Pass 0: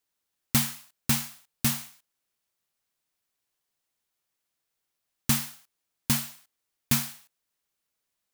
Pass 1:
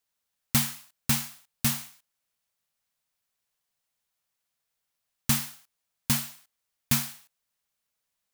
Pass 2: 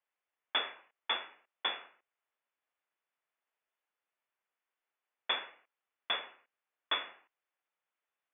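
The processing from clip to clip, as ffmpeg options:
ffmpeg -i in.wav -af "equalizer=frequency=340:width_type=o:width=0.34:gain=-12.5" out.wav
ffmpeg -i in.wav -filter_complex "[0:a]lowpass=frequency=3100:width_type=q:width=0.5098,lowpass=frequency=3100:width_type=q:width=0.6013,lowpass=frequency=3100:width_type=q:width=0.9,lowpass=frequency=3100:width_type=q:width=2.563,afreqshift=-3600,acrossover=split=280 2800:gain=0.0708 1 0.2[link_01][link_02][link_03];[link_01][link_02][link_03]amix=inputs=3:normalize=0" out.wav

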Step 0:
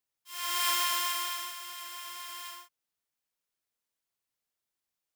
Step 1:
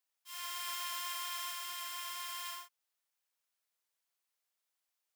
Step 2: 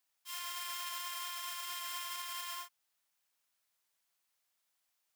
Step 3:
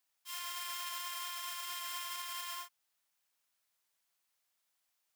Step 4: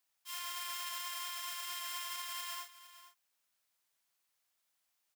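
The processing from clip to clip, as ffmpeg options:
ffmpeg -i in.wav -af "highpass=550,areverse,acompressor=threshold=-38dB:ratio=10,areverse,volume=1dB" out.wav
ffmpeg -i in.wav -af "equalizer=frequency=460:width=4:gain=-5,alimiter=level_in=12.5dB:limit=-24dB:level=0:latency=1:release=64,volume=-12.5dB,volume=5dB" out.wav
ffmpeg -i in.wav -af anull out.wav
ffmpeg -i in.wav -af "aecho=1:1:460:0.178" out.wav

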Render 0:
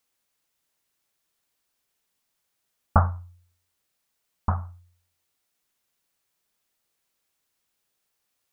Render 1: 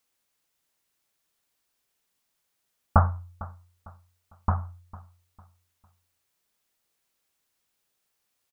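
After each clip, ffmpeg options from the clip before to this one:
ffmpeg -i in.wav -af "aecho=1:1:452|904|1356:0.106|0.036|0.0122" out.wav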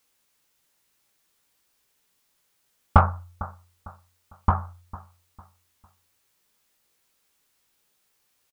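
ffmpeg -i in.wav -filter_complex "[0:a]bandreject=frequency=680:width=12,asplit=2[link_01][link_02];[link_02]asoftclip=type=tanh:threshold=-14.5dB,volume=-3.5dB[link_03];[link_01][link_03]amix=inputs=2:normalize=0,asplit=2[link_04][link_05];[link_05]adelay=17,volume=-7dB[link_06];[link_04][link_06]amix=inputs=2:normalize=0,volume=1.5dB" out.wav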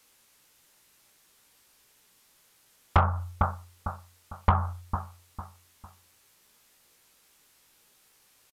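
ffmpeg -i in.wav -af "acompressor=threshold=-23dB:ratio=6,aeval=exprs='0.266*sin(PI/2*1.78*val(0)/0.266)':channel_layout=same,aresample=32000,aresample=44100" out.wav

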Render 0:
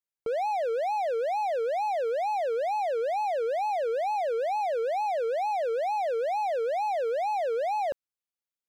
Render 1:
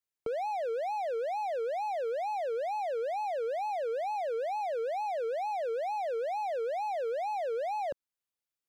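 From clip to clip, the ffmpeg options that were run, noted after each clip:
ffmpeg -i in.wav -filter_complex "[0:a]acrossover=split=280[link_01][link_02];[link_02]acompressor=threshold=-37dB:ratio=2[link_03];[link_01][link_03]amix=inputs=2:normalize=0" out.wav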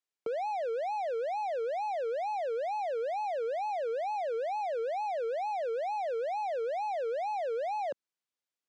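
ffmpeg -i in.wav -af "highpass=190,lowpass=7800" out.wav

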